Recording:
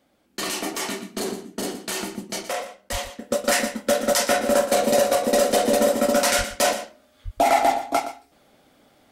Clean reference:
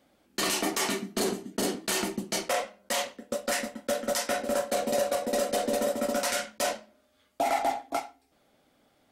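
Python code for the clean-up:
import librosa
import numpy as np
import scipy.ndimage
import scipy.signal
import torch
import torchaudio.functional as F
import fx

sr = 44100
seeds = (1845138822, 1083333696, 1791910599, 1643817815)

y = fx.highpass(x, sr, hz=140.0, slope=24, at=(2.91, 3.03), fade=0.02)
y = fx.highpass(y, sr, hz=140.0, slope=24, at=(6.37, 6.49), fade=0.02)
y = fx.highpass(y, sr, hz=140.0, slope=24, at=(7.24, 7.36), fade=0.02)
y = fx.fix_echo_inverse(y, sr, delay_ms=119, level_db=-12.5)
y = fx.fix_level(y, sr, at_s=3.19, step_db=-8.5)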